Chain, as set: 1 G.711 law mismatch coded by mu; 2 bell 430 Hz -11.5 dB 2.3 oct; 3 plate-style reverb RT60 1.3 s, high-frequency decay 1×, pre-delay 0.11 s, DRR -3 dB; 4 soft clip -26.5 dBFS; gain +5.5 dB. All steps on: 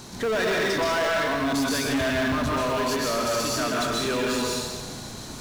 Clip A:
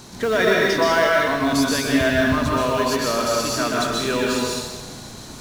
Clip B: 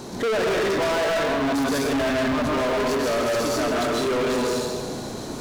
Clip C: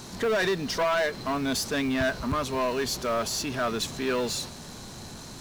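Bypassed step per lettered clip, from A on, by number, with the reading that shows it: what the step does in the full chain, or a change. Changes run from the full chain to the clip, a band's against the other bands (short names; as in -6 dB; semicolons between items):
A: 4, distortion -9 dB; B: 2, 500 Hz band +4.0 dB; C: 3, momentary loudness spread change +9 LU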